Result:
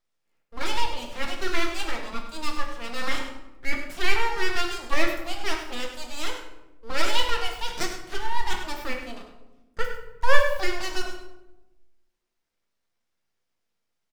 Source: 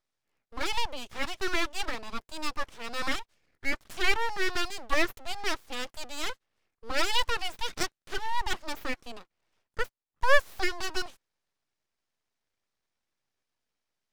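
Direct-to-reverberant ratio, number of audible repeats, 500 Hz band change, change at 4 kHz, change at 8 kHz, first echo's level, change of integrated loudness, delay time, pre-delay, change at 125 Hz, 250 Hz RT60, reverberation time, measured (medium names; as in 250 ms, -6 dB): 0.5 dB, 1, +3.0 dB, +2.5 dB, +2.0 dB, -10.0 dB, +2.5 dB, 100 ms, 4 ms, +7.0 dB, 1.5 s, 1.0 s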